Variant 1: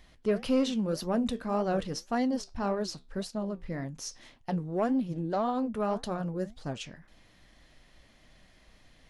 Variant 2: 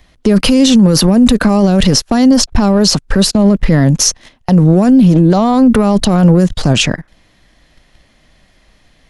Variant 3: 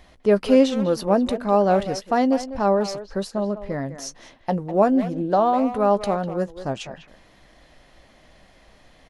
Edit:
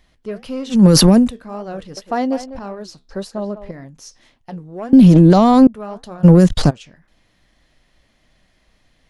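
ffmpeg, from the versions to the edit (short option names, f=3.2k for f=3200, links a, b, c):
-filter_complex "[1:a]asplit=3[a][b][c];[2:a]asplit=2[d][e];[0:a]asplit=6[f][g][h][i][j][k];[f]atrim=end=0.85[l];[a]atrim=start=0.69:end=1.31[m];[g]atrim=start=1.15:end=1.972[n];[d]atrim=start=1.968:end=2.592[o];[h]atrim=start=2.588:end=3.092[p];[e]atrim=start=3.088:end=3.712[q];[i]atrim=start=3.708:end=4.932[r];[b]atrim=start=4.928:end=5.672[s];[j]atrim=start=5.668:end=6.25[t];[c]atrim=start=6.23:end=6.71[u];[k]atrim=start=6.69[v];[l][m]acrossfade=d=0.16:c1=tri:c2=tri[w];[w][n]acrossfade=d=0.16:c1=tri:c2=tri[x];[x][o]acrossfade=d=0.004:c1=hsin:c2=hsin[y];[y][p]acrossfade=d=0.004:c1=hsin:c2=hsin[z];[z][q]acrossfade=d=0.004:c1=hsin:c2=hsin[aa];[aa][r]acrossfade=d=0.004:c1=hsin:c2=hsin[ab];[ab][s]acrossfade=d=0.004:c1=hsin:c2=hsin[ac];[ac][t]acrossfade=d=0.004:c1=hsin:c2=hsin[ad];[ad][u]acrossfade=d=0.02:c1=tri:c2=tri[ae];[ae][v]acrossfade=d=0.02:c1=tri:c2=tri"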